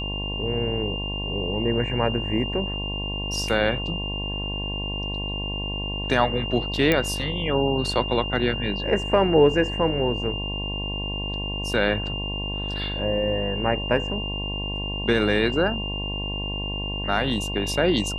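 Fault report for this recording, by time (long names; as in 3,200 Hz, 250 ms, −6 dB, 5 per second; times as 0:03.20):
mains buzz 50 Hz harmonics 22 −31 dBFS
whistle 2,800 Hz −30 dBFS
0:06.92: click −7 dBFS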